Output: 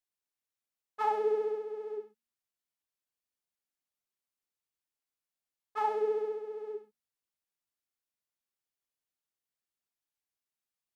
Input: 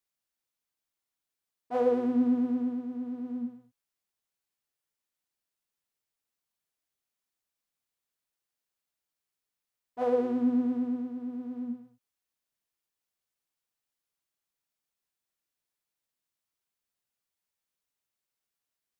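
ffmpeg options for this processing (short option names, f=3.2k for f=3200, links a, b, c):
-af "asetrate=76440,aresample=44100,bandreject=f=76.3:t=h:w=4,bandreject=f=152.6:t=h:w=4,bandreject=f=228.9:t=h:w=4,volume=-3.5dB"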